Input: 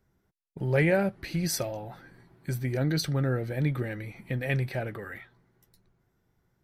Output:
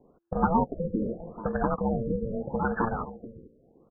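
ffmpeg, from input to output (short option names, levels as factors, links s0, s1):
-filter_complex "[0:a]acrossover=split=620[s0][s1];[s0]acompressor=threshold=0.0112:ratio=16[s2];[s2][s1]amix=inputs=2:normalize=0,aeval=exprs='val(0)*sin(2*PI*340*n/s)':c=same,lowpass=8200,asplit=2[s3][s4];[s4]aecho=0:1:731:0.188[s5];[s3][s5]amix=inputs=2:normalize=0,atempo=1.7,alimiter=level_in=13.3:limit=0.891:release=50:level=0:latency=1,afftfilt=real='re*lt(b*sr/1024,540*pow(1800/540,0.5+0.5*sin(2*PI*0.8*pts/sr)))':imag='im*lt(b*sr/1024,540*pow(1800/540,0.5+0.5*sin(2*PI*0.8*pts/sr)))':win_size=1024:overlap=0.75,volume=0.447"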